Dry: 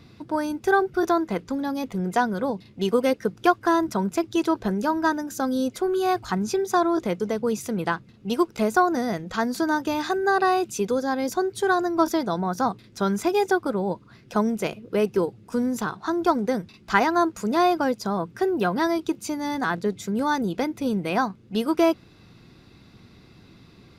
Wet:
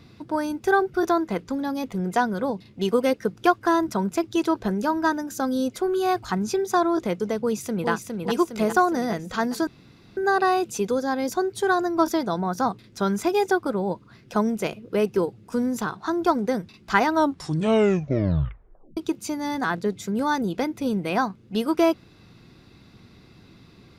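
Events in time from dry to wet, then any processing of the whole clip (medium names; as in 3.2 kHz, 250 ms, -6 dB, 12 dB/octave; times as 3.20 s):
7.39–7.90 s: echo throw 410 ms, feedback 60%, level -4 dB
9.67–10.17 s: room tone
17.02 s: tape stop 1.95 s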